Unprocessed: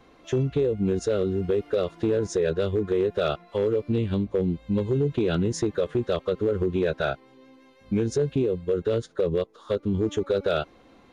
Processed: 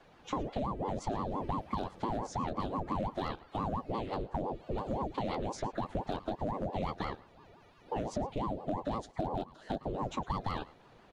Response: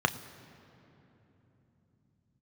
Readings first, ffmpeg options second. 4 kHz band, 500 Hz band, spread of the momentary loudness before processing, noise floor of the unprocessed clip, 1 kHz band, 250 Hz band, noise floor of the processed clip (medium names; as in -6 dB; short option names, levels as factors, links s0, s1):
-9.5 dB, -14.5 dB, 4 LU, -55 dBFS, +3.5 dB, -11.0 dB, -60 dBFS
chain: -filter_complex "[0:a]acrossover=split=420|4300[s0][s1][s2];[s0]acompressor=threshold=0.0282:ratio=4[s3];[s1]acompressor=threshold=0.02:ratio=4[s4];[s2]acompressor=threshold=0.00355:ratio=4[s5];[s3][s4][s5]amix=inputs=3:normalize=0,aecho=1:1:109:0.1,aeval=exprs='val(0)*sin(2*PI*420*n/s+420*0.65/5.8*sin(2*PI*5.8*n/s))':c=same,volume=0.794"